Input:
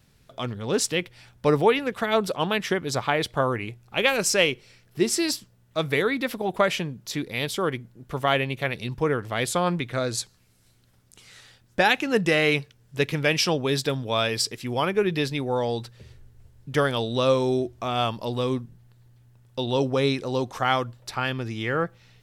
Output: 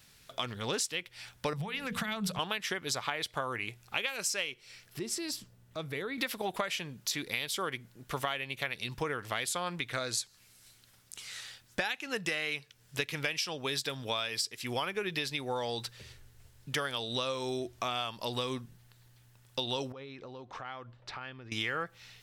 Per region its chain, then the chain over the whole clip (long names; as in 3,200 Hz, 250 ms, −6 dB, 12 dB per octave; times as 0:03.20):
0:01.53–0:02.39: mains-hum notches 60/120/180/240/300/360/420/480 Hz + downward compressor 12 to 1, threshold −29 dBFS + low shelf with overshoot 240 Hz +11 dB, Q 3
0:04.99–0:06.18: tilt shelving filter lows +6.5 dB, about 750 Hz + downward compressor 2 to 1, threshold −41 dBFS
0:19.92–0:21.52: head-to-tape spacing loss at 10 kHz 32 dB + downward compressor 8 to 1, threshold −39 dBFS
whole clip: tilt shelving filter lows −7 dB, about 890 Hz; downward compressor 12 to 1, threshold −30 dBFS